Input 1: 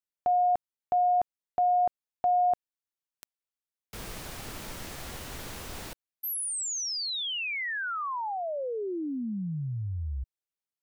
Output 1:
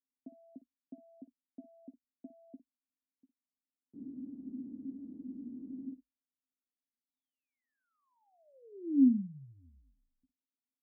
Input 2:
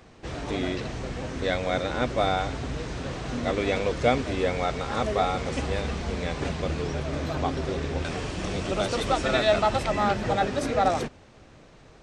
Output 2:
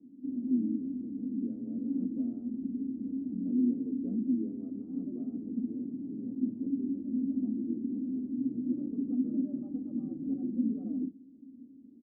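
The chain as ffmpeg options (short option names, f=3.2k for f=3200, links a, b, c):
-filter_complex "[0:a]afreqshift=-52,asplit=2[a][b];[b]acompressor=threshold=-35dB:ratio=6:release=87,volume=-0.5dB[c];[a][c]amix=inputs=2:normalize=0,asoftclip=type=tanh:threshold=-10.5dB,asuperpass=centerf=260:order=4:qfactor=5.1,aemphasis=mode=reproduction:type=riaa,asplit=2[d][e];[e]aecho=0:1:15|58:0.237|0.178[f];[d][f]amix=inputs=2:normalize=0"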